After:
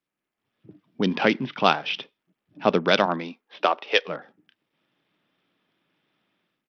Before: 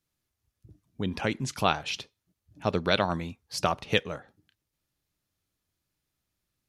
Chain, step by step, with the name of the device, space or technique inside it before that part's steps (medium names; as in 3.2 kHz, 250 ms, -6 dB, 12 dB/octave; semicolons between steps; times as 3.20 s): 3.05–4.07 s: high-pass 160 Hz -> 450 Hz 24 dB/octave; Bluetooth headset (high-pass 180 Hz 24 dB/octave; level rider gain up to 16 dB; resampled via 8 kHz; trim -1 dB; SBC 64 kbps 44.1 kHz)